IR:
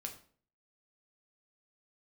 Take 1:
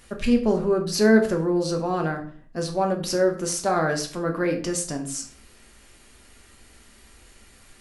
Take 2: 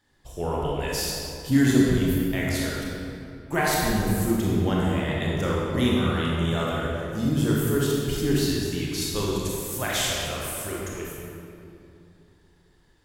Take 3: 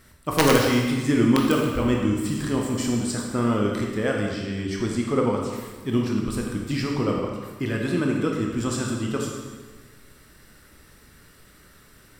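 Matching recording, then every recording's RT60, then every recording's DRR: 1; 0.50, 2.7, 1.5 s; 2.5, -5.0, -0.5 dB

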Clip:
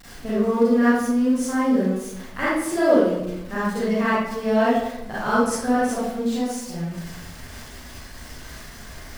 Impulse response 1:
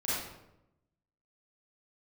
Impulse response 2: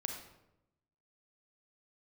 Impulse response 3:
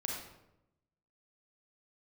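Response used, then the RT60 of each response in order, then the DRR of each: 1; 0.90, 0.90, 0.90 s; -10.5, 3.0, -1.5 dB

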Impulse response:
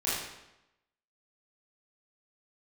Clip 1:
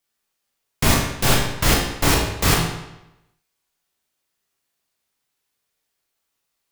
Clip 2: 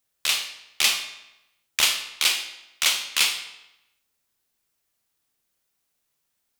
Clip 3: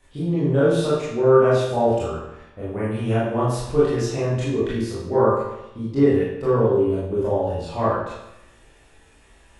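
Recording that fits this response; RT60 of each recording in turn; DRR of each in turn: 3; 0.90, 0.90, 0.90 s; -2.0, 6.0, -10.0 dB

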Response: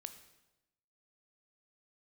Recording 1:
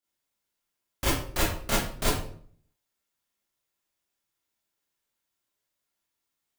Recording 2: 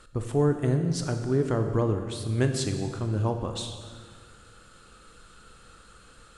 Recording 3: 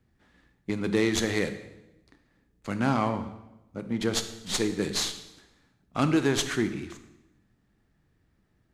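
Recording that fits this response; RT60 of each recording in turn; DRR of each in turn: 3; 0.55, 1.8, 0.95 s; -9.0, 5.5, 9.0 dB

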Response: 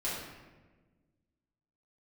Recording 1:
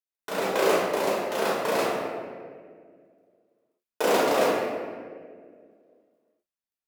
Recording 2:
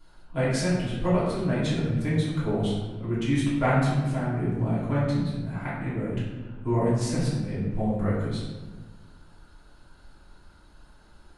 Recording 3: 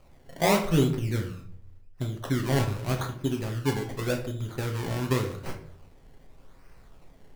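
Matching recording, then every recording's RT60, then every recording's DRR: 2; 2.0, 1.3, 0.60 s; -7.0, -10.0, 2.0 dB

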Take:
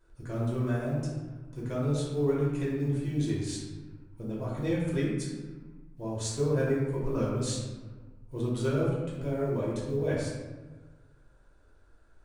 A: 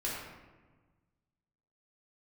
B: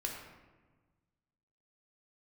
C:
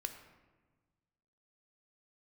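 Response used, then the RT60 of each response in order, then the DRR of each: A; 1.3, 1.3, 1.4 s; -7.0, -0.5, 6.0 dB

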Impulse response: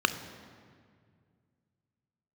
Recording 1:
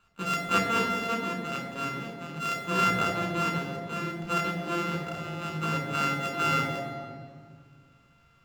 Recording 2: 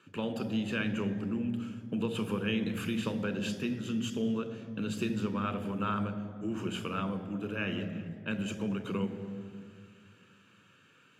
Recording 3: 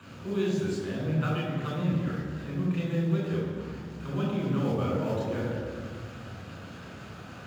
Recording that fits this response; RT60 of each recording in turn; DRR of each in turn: 2; 2.1, 2.1, 2.1 s; 3.5, 9.5, -5.0 dB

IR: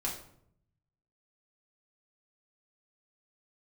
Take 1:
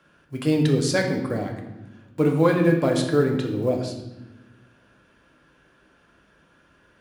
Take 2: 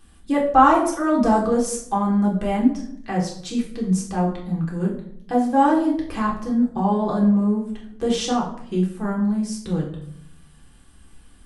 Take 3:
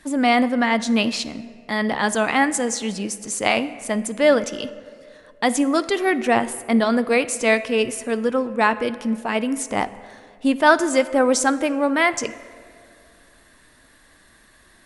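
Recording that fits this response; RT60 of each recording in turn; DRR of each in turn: 2; 1.1, 0.70, 2.4 s; 1.5, -4.5, 13.5 dB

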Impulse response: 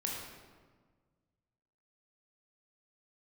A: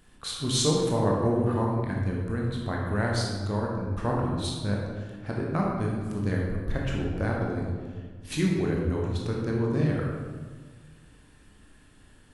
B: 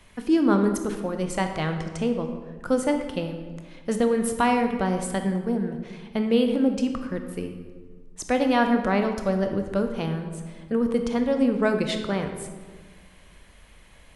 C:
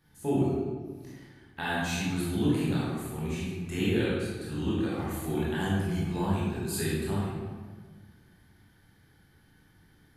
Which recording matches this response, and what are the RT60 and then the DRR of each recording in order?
A; 1.5, 1.6, 1.5 s; -2.5, 5.5, -8.0 dB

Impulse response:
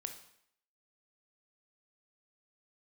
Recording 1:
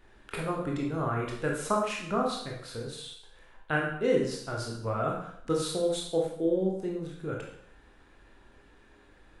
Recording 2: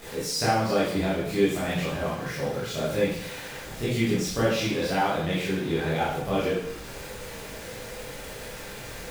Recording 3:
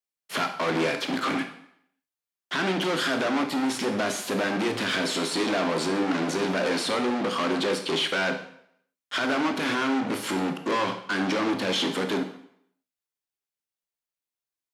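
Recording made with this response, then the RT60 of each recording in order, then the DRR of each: 3; 0.70, 0.70, 0.70 s; -1.5, -9.5, 6.0 dB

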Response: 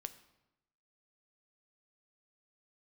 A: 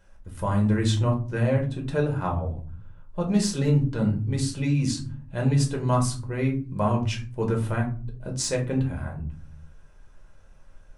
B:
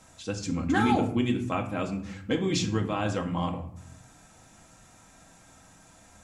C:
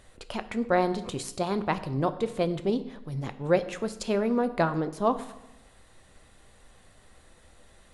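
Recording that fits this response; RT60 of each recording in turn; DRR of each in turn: C; 0.45, 0.65, 0.95 s; -0.5, 2.0, 10.5 dB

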